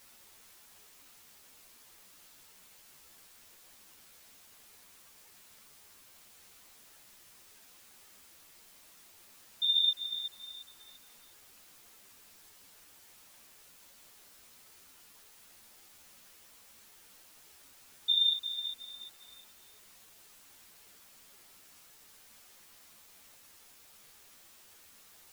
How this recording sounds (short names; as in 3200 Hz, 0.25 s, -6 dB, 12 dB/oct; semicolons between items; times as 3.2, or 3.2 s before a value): chopped level 2.5 Hz, depth 65%, duty 80%; a quantiser's noise floor 10-bit, dither triangular; a shimmering, thickened sound